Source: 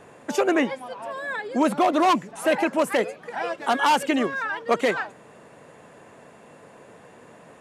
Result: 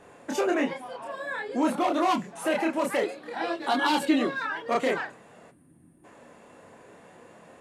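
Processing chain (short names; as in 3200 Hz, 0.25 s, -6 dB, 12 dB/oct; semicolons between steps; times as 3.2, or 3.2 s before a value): chorus voices 2, 0.52 Hz, delay 27 ms, depth 4.2 ms; 3.03–4.47 thirty-one-band EQ 315 Hz +11 dB, 4000 Hz +12 dB, 6300 Hz -4 dB; in parallel at +2 dB: limiter -18.5 dBFS, peak gain reduction 9 dB; 5.51–6.04 on the sum: spectral gain 370–8100 Hz -22 dB; reverb, pre-delay 3 ms, DRR 13.5 dB; gain -7 dB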